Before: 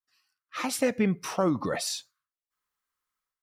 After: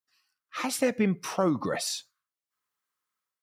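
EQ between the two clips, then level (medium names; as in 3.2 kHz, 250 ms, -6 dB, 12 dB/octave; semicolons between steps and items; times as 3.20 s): high-pass 97 Hz; 0.0 dB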